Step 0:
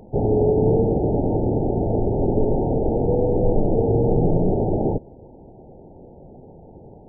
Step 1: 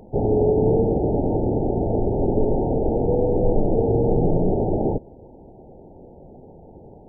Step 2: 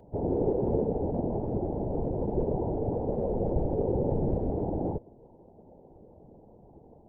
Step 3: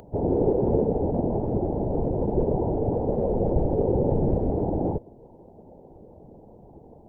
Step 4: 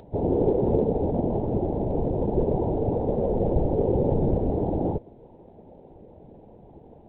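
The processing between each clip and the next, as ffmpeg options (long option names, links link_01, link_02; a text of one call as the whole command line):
ffmpeg -i in.wav -af "equalizer=frequency=130:width=1.5:gain=-2.5" out.wav
ffmpeg -i in.wav -af "afftfilt=real='hypot(re,im)*cos(2*PI*random(0))':imag='hypot(re,im)*sin(2*PI*random(1))':win_size=512:overlap=0.75,volume=-3dB" out.wav
ffmpeg -i in.wav -af "acompressor=mode=upward:threshold=-51dB:ratio=2.5,volume=5dB" out.wav
ffmpeg -i in.wav -ar 8000 -c:a adpcm_g726 -b:a 32k out.wav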